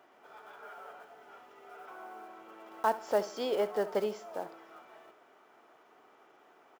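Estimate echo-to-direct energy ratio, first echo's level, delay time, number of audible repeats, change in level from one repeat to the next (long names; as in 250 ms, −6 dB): −15.5 dB, −16.0 dB, 70 ms, 2, −9.0 dB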